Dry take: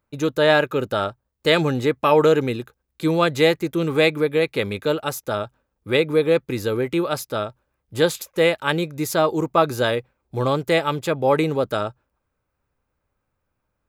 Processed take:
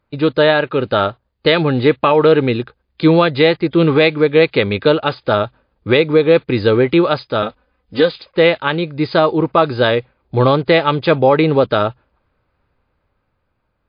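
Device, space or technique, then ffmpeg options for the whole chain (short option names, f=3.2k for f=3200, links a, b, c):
low-bitrate web radio: -filter_complex "[0:a]asettb=1/sr,asplit=3[a][b][c];[a]atrim=end=7.424[d];[b]atrim=start=7.42:end=8.11,asetpts=PTS-STARTPTS,afade=t=in:d=0.004:c=qsin,afade=t=out:st=0.686:d=0.004:c=qsin,aecho=1:1:4:0.87,atrim=end_sample=30429[e];[c]atrim=start=8.106[f];[d][e]acrossfade=d=0.004:c1=hsin:c2=qsin[g];[g][f]acrossfade=d=0.004:c1=qsin:c2=hsin,dynaudnorm=f=410:g=7:m=8dB,alimiter=limit=-9dB:level=0:latency=1:release=365,volume=7.5dB" -ar 11025 -c:a libmp3lame -b:a 40k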